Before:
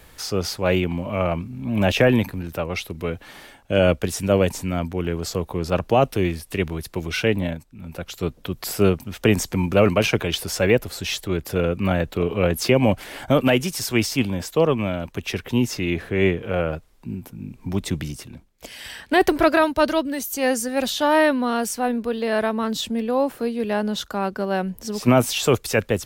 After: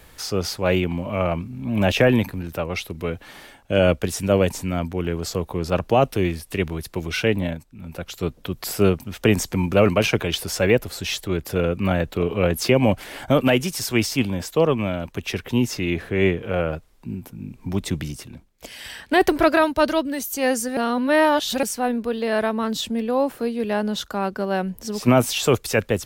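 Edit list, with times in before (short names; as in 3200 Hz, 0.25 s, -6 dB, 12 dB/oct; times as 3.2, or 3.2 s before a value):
20.77–21.63 reverse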